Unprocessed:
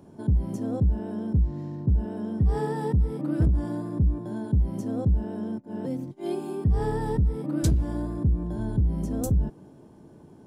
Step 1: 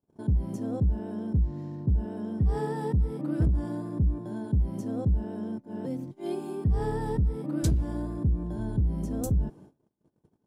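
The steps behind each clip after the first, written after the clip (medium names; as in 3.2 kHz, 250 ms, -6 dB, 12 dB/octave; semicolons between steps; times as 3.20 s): gate -46 dBFS, range -33 dB; trim -2.5 dB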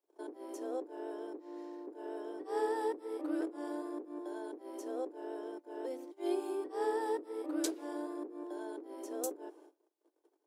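steep high-pass 310 Hz 72 dB/octave; trim -1 dB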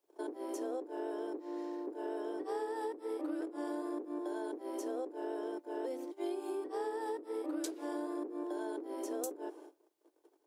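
compression 12:1, threshold -40 dBFS, peak gain reduction 12.5 dB; trim +5.5 dB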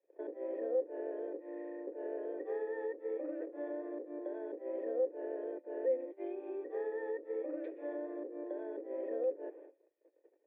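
cascade formant filter e; trim +10.5 dB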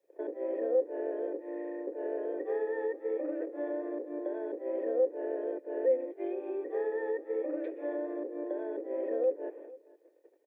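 delay 460 ms -21 dB; trim +5.5 dB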